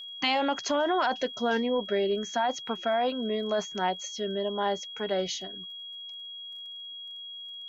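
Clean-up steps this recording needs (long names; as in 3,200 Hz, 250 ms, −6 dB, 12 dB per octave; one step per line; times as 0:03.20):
click removal
notch filter 3,300 Hz, Q 30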